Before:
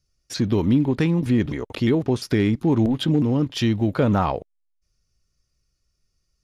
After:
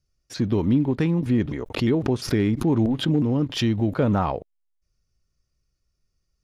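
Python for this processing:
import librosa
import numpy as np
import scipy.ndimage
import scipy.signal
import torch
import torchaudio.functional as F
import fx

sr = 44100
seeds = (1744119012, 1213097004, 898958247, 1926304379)

y = fx.high_shelf(x, sr, hz=2300.0, db=-5.5)
y = fx.pre_swell(y, sr, db_per_s=140.0, at=(1.47, 3.93), fade=0.02)
y = y * librosa.db_to_amplitude(-1.5)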